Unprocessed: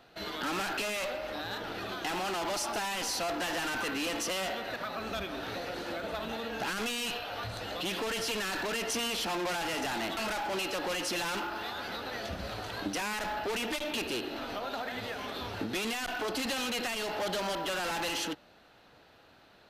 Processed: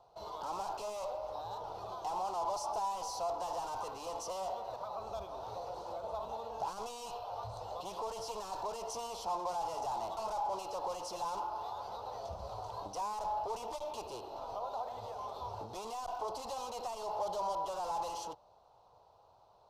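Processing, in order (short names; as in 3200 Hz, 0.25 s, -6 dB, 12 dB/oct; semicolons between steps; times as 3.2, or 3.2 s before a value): EQ curve 110 Hz 0 dB, 280 Hz -17 dB, 420 Hz -2 dB, 1000 Hz +9 dB, 1700 Hz -24 dB, 5600 Hz -3 dB, 13000 Hz -11 dB; gain -5.5 dB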